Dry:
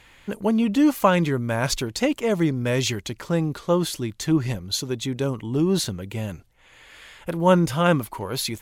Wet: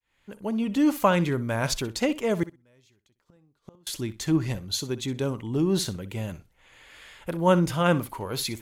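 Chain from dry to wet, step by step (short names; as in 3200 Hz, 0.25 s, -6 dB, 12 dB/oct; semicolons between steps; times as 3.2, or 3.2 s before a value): opening faded in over 0.91 s; 2.43–3.87 flipped gate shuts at -23 dBFS, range -35 dB; flutter echo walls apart 10.7 m, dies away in 0.23 s; gain -3 dB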